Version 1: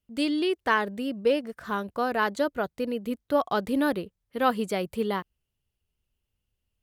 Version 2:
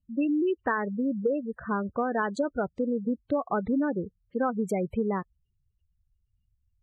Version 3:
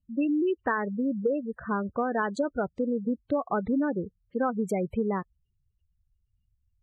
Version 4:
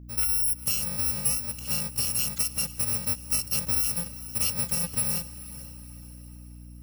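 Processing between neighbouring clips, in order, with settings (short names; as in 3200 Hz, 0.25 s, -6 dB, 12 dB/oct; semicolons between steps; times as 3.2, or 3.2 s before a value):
spectral gate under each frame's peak -15 dB strong; low shelf 240 Hz +8 dB; compressor, threshold -24 dBFS, peak gain reduction 8.5 dB; gain +1 dB
nothing audible
FFT order left unsorted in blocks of 128 samples; diffused feedback echo 0.464 s, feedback 46%, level -15.5 dB; hum 60 Hz, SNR 15 dB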